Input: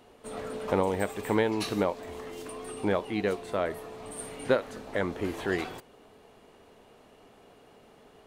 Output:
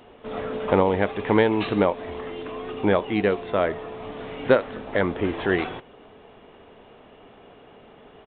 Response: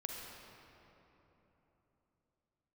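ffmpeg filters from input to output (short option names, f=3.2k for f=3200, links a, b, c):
-af "aresample=8000,aresample=44100,volume=7dB"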